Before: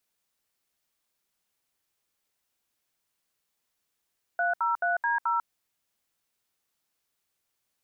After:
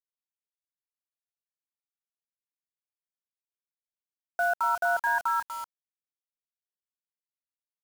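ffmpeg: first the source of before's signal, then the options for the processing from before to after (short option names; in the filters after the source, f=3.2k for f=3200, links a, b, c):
-f lavfi -i "aevalsrc='0.0501*clip(min(mod(t,0.216),0.146-mod(t,0.216))/0.002,0,1)*(eq(floor(t/0.216),0)*(sin(2*PI*697*mod(t,0.216))+sin(2*PI*1477*mod(t,0.216)))+eq(floor(t/0.216),1)*(sin(2*PI*941*mod(t,0.216))+sin(2*PI*1336*mod(t,0.216)))+eq(floor(t/0.216),2)*(sin(2*PI*697*mod(t,0.216))+sin(2*PI*1477*mod(t,0.216)))+eq(floor(t/0.216),3)*(sin(2*PI*941*mod(t,0.216))+sin(2*PI*1633*mod(t,0.216)))+eq(floor(t/0.216),4)*(sin(2*PI*941*mod(t,0.216))+sin(2*PI*1336*mod(t,0.216))))':d=1.08:s=44100"
-filter_complex "[0:a]lowshelf=f=320:g=9.5,asplit=2[a][b];[b]aecho=0:1:243:0.282[c];[a][c]amix=inputs=2:normalize=0,acrusher=bits=6:mix=0:aa=0.000001"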